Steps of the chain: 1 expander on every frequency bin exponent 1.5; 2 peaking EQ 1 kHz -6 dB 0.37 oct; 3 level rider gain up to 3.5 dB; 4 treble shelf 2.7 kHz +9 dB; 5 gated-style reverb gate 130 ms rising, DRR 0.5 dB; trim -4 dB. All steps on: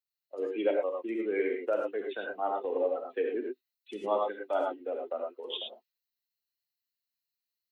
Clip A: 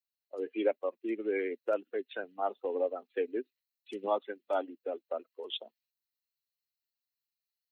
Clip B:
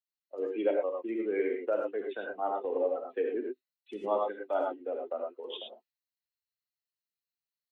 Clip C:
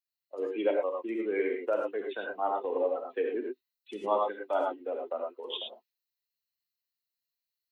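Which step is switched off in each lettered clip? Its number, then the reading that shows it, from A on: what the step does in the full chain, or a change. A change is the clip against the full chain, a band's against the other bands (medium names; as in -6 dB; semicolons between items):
5, crest factor change +2.0 dB; 4, 2 kHz band -2.5 dB; 2, 1 kHz band +2.0 dB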